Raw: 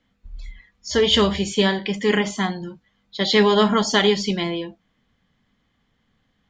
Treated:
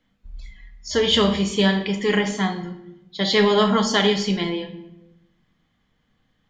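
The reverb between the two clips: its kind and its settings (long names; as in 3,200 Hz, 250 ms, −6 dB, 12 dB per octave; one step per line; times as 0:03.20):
rectangular room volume 290 cubic metres, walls mixed, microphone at 0.53 metres
level −1.5 dB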